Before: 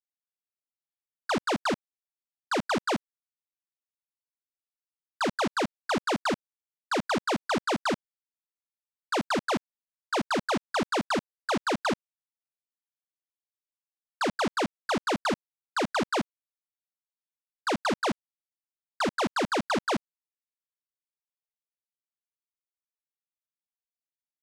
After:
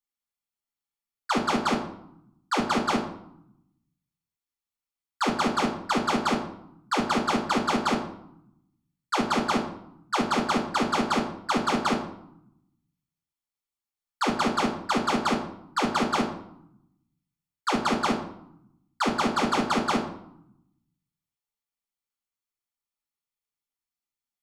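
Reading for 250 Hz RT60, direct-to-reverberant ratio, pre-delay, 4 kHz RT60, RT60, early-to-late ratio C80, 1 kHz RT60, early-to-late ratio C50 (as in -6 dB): 1.1 s, -1.0 dB, 3 ms, 0.50 s, 0.75 s, 11.0 dB, 0.80 s, 8.0 dB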